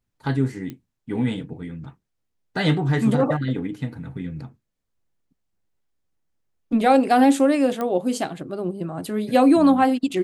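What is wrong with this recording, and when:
0.7 pop -21 dBFS
7.81 pop -14 dBFS

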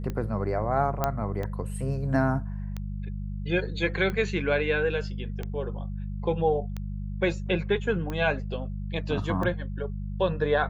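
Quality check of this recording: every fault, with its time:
hum 50 Hz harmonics 4 -33 dBFS
tick 45 rpm -20 dBFS
1.04 pop -11 dBFS

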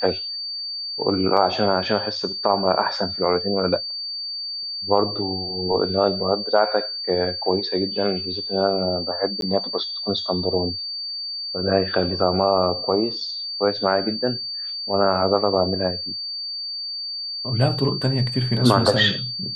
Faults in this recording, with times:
tone 4600 Hz -27 dBFS
1.37 gap 4 ms
9.41–9.42 gap 12 ms

